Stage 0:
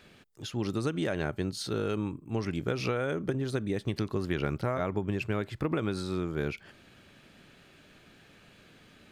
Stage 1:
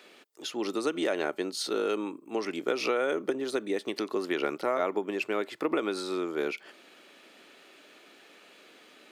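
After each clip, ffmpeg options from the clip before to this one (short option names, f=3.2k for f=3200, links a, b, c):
-af "highpass=f=300:w=0.5412,highpass=f=300:w=1.3066,bandreject=f=1.6k:w=14,volume=4dB"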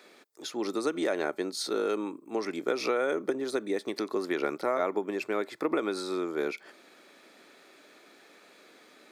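-af "equalizer=f=2.9k:w=5.5:g=-11.5"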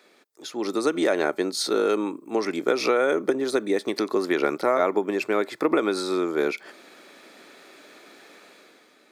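-af "dynaudnorm=f=110:g=11:m=9dB,volume=-2dB"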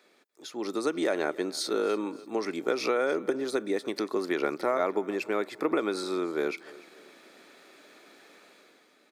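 -af "aecho=1:1:293|586|879:0.0891|0.0419|0.0197,volume=-5.5dB"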